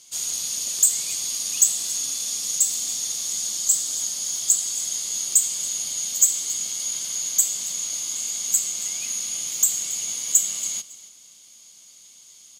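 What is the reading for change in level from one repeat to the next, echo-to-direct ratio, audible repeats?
-13.0 dB, -18.0 dB, 2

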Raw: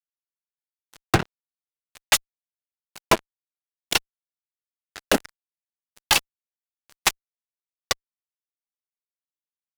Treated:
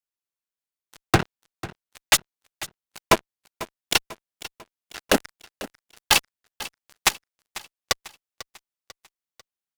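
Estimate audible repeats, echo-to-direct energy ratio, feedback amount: 3, -15.5 dB, 47%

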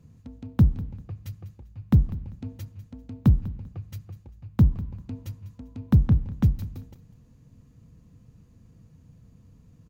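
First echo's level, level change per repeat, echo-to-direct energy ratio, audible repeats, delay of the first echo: -17.0 dB, -12.0 dB, -16.5 dB, 2, 197 ms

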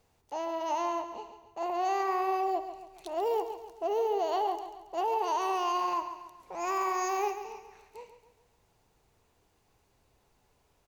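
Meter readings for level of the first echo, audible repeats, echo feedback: -10.5 dB, 4, 44%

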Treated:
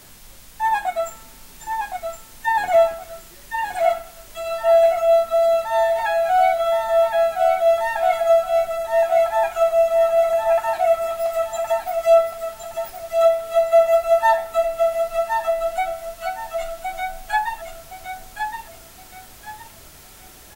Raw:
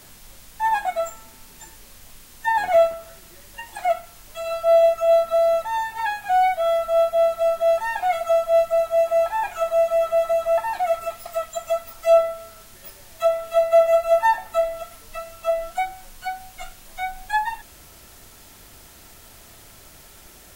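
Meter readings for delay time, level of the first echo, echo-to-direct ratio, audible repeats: 1067 ms, -5.5 dB, -5.0 dB, 3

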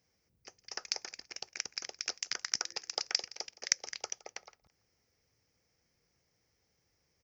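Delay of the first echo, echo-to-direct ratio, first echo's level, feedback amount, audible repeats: 167 ms, -20.0 dB, -20.0 dB, 22%, 2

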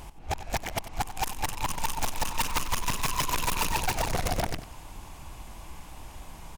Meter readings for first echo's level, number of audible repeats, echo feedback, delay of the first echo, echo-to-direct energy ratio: -13.5 dB, 2, 27%, 93 ms, -13.0 dB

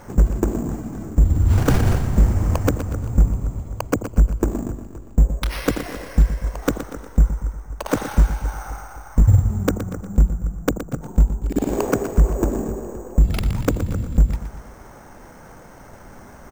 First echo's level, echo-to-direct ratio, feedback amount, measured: -11.0 dB, -10.0 dB, 47%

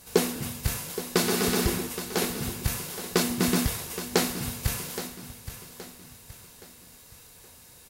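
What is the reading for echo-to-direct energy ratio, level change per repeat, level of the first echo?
-11.5 dB, -8.0 dB, -12.0 dB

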